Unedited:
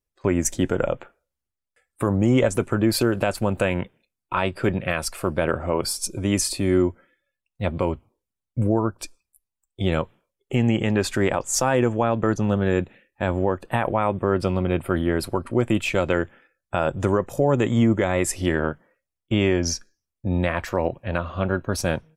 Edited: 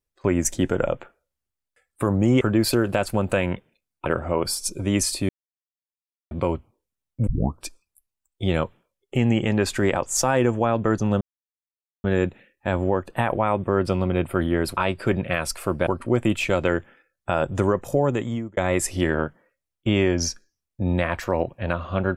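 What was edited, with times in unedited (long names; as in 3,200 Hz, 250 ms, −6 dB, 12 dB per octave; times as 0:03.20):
0:02.41–0:02.69: remove
0:04.34–0:05.44: move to 0:15.32
0:06.67–0:07.69: silence
0:08.65: tape start 0.32 s
0:12.59: splice in silence 0.83 s
0:17.39–0:18.02: fade out linear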